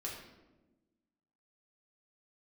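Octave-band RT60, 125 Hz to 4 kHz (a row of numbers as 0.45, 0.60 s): 1.5, 1.7, 1.3, 0.95, 0.80, 0.65 s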